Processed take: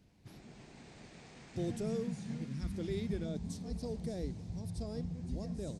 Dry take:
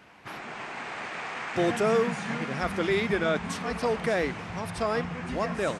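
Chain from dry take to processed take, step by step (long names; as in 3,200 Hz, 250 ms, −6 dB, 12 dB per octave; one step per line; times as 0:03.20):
flat-topped bell 1,900 Hz −8.5 dB, from 0:03.24 −14.5 dB
0:02.48–0:02.75: gain on a spectral selection 360–870 Hz −10 dB
guitar amp tone stack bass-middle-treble 10-0-1
level +10 dB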